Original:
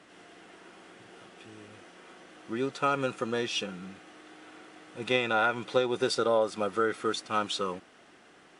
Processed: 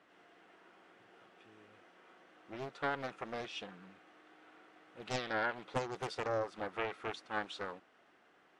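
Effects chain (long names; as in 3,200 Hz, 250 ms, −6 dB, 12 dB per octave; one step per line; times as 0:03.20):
low-pass filter 1,300 Hz 6 dB per octave
low-shelf EQ 490 Hz −11.5 dB
highs frequency-modulated by the lows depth 0.9 ms
level −4 dB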